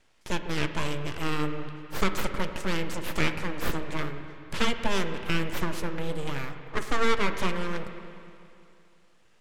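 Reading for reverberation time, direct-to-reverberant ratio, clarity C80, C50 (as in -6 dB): 2.6 s, 7.5 dB, 9.0 dB, 8.0 dB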